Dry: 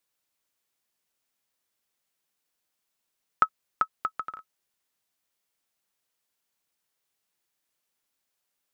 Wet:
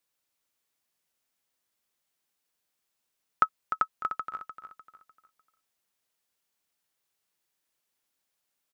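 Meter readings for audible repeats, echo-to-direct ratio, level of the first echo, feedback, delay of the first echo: 3, −8.5 dB, −9.0 dB, 36%, 300 ms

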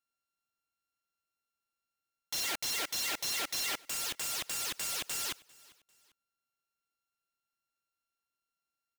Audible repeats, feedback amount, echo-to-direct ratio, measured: 2, 36%, −23.0 dB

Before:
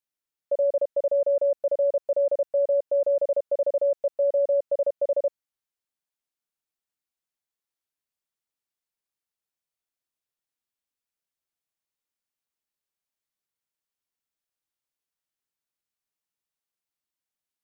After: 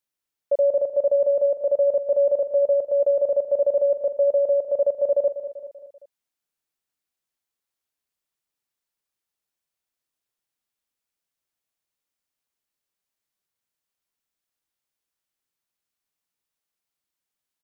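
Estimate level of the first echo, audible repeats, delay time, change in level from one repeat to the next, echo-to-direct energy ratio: −12.0 dB, 4, 194 ms, −5.5 dB, −10.5 dB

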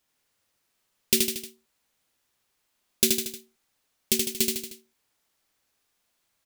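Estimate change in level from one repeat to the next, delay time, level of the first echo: −5.5 dB, 77 ms, −3.5 dB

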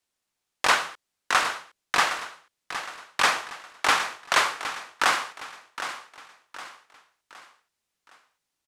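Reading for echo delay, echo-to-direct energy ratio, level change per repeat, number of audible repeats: 764 ms, −10.0 dB, −8.0 dB, 4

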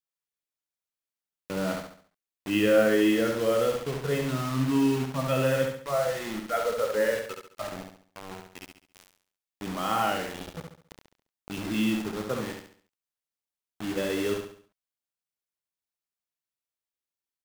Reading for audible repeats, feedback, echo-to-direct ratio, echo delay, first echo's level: 4, 40%, −4.0 dB, 69 ms, −5.0 dB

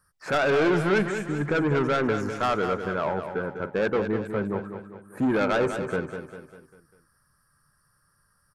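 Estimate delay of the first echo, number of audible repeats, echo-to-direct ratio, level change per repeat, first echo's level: 199 ms, 5, −7.5 dB, −6.5 dB, −8.5 dB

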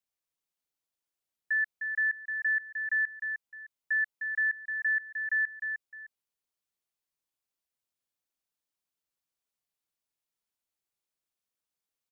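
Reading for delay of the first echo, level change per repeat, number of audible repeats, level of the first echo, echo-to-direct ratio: 306 ms, −11.5 dB, 2, −6.5 dB, −6.0 dB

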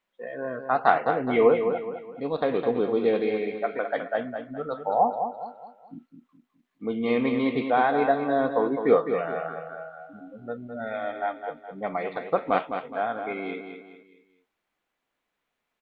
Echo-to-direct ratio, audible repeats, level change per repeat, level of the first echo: −7.0 dB, 4, −8.0 dB, −7.5 dB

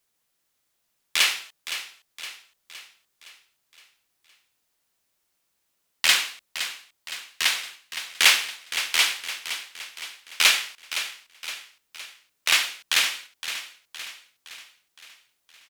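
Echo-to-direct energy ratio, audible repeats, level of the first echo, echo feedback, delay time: −9.5 dB, 5, −11.0 dB, 52%, 515 ms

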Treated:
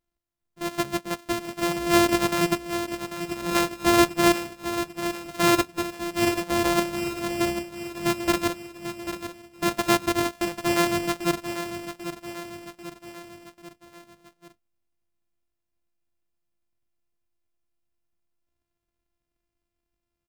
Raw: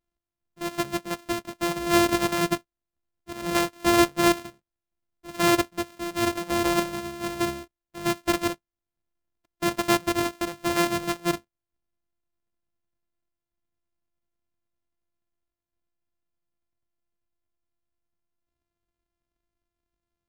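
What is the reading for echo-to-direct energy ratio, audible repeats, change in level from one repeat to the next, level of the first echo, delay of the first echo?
−8.5 dB, 4, −5.5 dB, −10.0 dB, 792 ms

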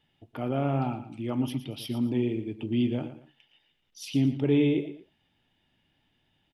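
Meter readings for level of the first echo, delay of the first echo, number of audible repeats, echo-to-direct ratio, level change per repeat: −12.0 dB, 115 ms, 2, −11.5 dB, −10.5 dB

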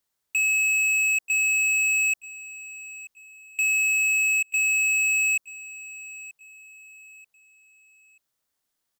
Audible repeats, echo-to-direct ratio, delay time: 2, −17.0 dB, 934 ms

